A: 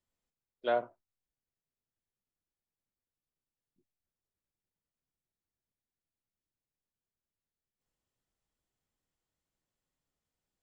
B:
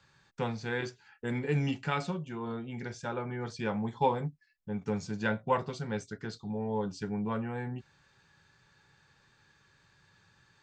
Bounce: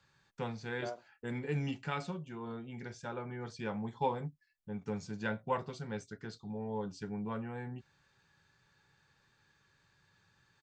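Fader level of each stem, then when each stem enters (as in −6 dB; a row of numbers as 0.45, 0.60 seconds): −12.5, −5.5 decibels; 0.15, 0.00 seconds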